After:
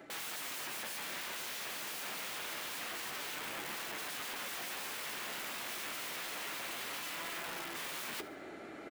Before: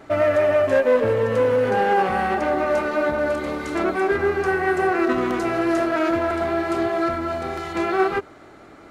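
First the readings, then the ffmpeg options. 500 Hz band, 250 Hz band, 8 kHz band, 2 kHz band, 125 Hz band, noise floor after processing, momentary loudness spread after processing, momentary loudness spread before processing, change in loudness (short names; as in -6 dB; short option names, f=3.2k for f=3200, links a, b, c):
-31.0 dB, -28.5 dB, n/a, -15.0 dB, -27.5 dB, -48 dBFS, 1 LU, 6 LU, -18.5 dB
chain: -filter_complex "[0:a]equalizer=f=1.1k:t=o:w=0.75:g=-8.5,aeval=exprs='(mod(22.4*val(0)+1,2)-1)/22.4':c=same,areverse,acompressor=threshold=-41dB:ratio=6,areverse,acrossover=split=160 2800:gain=0.178 1 0.158[a][b][c];[a][b][c]amix=inputs=3:normalize=0,flanger=delay=5.9:depth=8.6:regen=-50:speed=0.27:shape=sinusoidal,crystalizer=i=4.5:c=0,asplit=2[d][e];[e]aecho=0:1:74|148|222|296:0.126|0.0567|0.0255|0.0115[f];[d][f]amix=inputs=2:normalize=0,volume=3dB"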